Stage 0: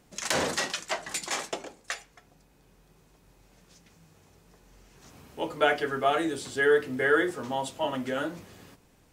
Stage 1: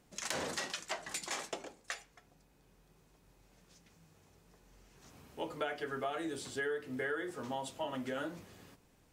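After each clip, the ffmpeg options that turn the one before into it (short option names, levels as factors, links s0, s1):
-af "acompressor=threshold=0.0398:ratio=6,volume=0.501"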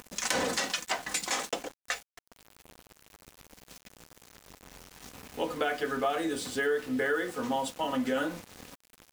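-af "aecho=1:1:4:0.47,acompressor=mode=upward:threshold=0.00501:ratio=2.5,aeval=exprs='val(0)*gte(abs(val(0)),0.00335)':c=same,volume=2.37"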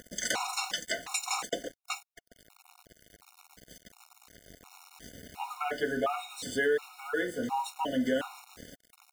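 -af "afftfilt=real='re*gt(sin(2*PI*1.4*pts/sr)*(1-2*mod(floor(b*sr/1024/730),2)),0)':imag='im*gt(sin(2*PI*1.4*pts/sr)*(1-2*mod(floor(b*sr/1024/730),2)),0)':win_size=1024:overlap=0.75,volume=1.19"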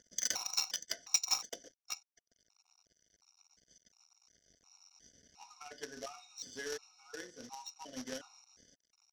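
-af "acrusher=bits=3:mode=log:mix=0:aa=0.000001,lowpass=f=5700:t=q:w=14,aeval=exprs='0.531*(cos(1*acos(clip(val(0)/0.531,-1,1)))-cos(1*PI/2))+0.0473*(cos(3*acos(clip(val(0)/0.531,-1,1)))-cos(3*PI/2))+0.0668*(cos(5*acos(clip(val(0)/0.531,-1,1)))-cos(5*PI/2))+0.0841*(cos(7*acos(clip(val(0)/0.531,-1,1)))-cos(7*PI/2))':c=same,volume=0.376"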